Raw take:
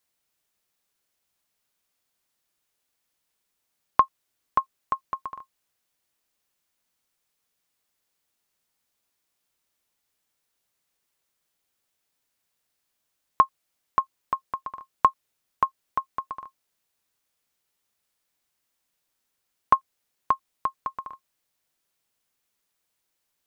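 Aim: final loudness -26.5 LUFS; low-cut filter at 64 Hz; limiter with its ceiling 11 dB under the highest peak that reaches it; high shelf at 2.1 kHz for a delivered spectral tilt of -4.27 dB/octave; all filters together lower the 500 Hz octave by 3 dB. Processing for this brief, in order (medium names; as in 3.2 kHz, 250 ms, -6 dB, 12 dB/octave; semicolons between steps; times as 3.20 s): high-pass 64 Hz; peaking EQ 500 Hz -4.5 dB; treble shelf 2.1 kHz +6 dB; trim +8 dB; peak limiter -7 dBFS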